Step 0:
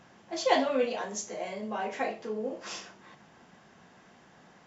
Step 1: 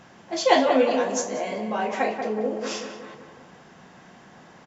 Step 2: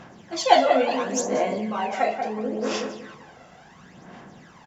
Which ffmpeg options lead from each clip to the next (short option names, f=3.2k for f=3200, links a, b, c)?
-filter_complex "[0:a]asplit=2[a][b];[b]adelay=186,lowpass=f=1.7k:p=1,volume=-5.5dB,asplit=2[c][d];[d]adelay=186,lowpass=f=1.7k:p=1,volume=0.55,asplit=2[e][f];[f]adelay=186,lowpass=f=1.7k:p=1,volume=0.55,asplit=2[g][h];[h]adelay=186,lowpass=f=1.7k:p=1,volume=0.55,asplit=2[i][j];[j]adelay=186,lowpass=f=1.7k:p=1,volume=0.55,asplit=2[k][l];[l]adelay=186,lowpass=f=1.7k:p=1,volume=0.55,asplit=2[m][n];[n]adelay=186,lowpass=f=1.7k:p=1,volume=0.55[o];[a][c][e][g][i][k][m][o]amix=inputs=8:normalize=0,volume=6.5dB"
-af "aphaser=in_gain=1:out_gain=1:delay=1.5:decay=0.56:speed=0.72:type=sinusoidal,volume=-1dB"